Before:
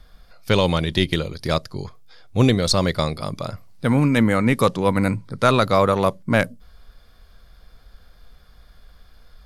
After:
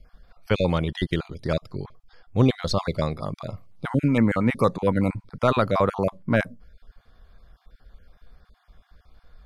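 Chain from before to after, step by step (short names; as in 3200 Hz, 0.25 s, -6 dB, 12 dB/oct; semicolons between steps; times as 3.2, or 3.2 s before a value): random spectral dropouts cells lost 26%; high shelf 3200 Hz -11.5 dB; gain -2 dB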